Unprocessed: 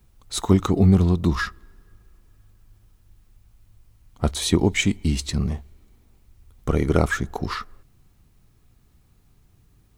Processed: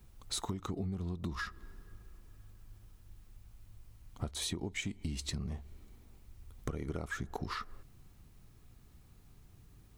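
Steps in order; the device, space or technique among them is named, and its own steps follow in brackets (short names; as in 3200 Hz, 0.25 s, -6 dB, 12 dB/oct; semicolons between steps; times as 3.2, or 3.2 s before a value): serial compression, leveller first (compressor 2.5:1, threshold -23 dBFS, peak gain reduction 9 dB; compressor 6:1, threshold -34 dBFS, peak gain reduction 15.5 dB); gain -1 dB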